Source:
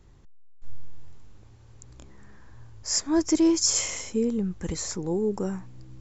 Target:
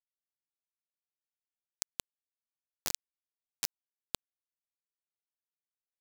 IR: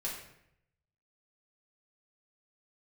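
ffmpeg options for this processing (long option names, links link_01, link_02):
-af "acompressor=threshold=-38dB:ratio=10,acrusher=bits=4:mix=0:aa=0.000001,volume=13dB"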